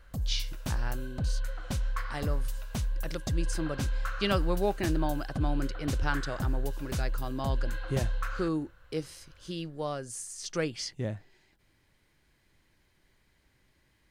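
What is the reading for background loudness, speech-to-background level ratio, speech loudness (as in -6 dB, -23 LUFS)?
-35.5 LUFS, 0.0 dB, -35.5 LUFS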